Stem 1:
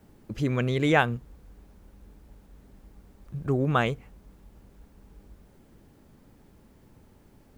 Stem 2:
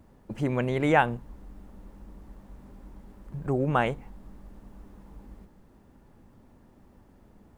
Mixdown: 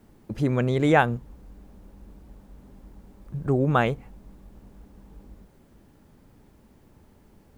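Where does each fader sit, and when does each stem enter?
-0.5 dB, -5.5 dB; 0.00 s, 0.00 s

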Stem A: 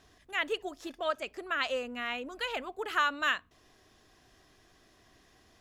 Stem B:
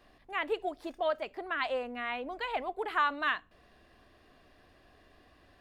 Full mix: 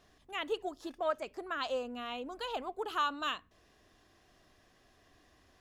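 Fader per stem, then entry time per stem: -5.5 dB, -7.5 dB; 0.00 s, 0.00 s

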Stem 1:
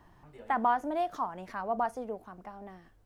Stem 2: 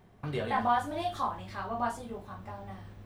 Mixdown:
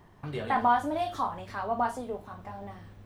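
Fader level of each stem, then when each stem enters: +0.5 dB, -1.5 dB; 0.00 s, 0.00 s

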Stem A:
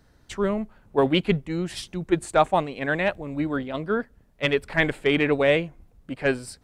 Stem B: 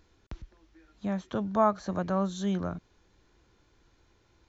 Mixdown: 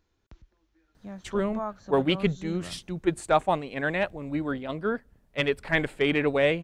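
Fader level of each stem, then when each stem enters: -3.0 dB, -9.5 dB; 0.95 s, 0.00 s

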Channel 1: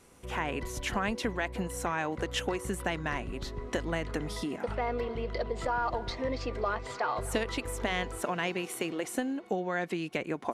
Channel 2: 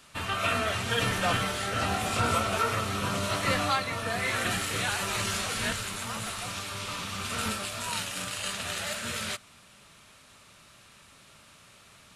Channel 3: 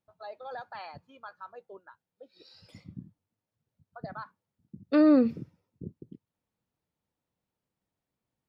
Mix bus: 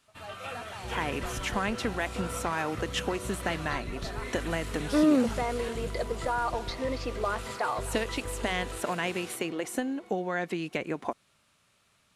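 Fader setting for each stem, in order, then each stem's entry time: +1.0 dB, -13.0 dB, -2.5 dB; 0.60 s, 0.00 s, 0.00 s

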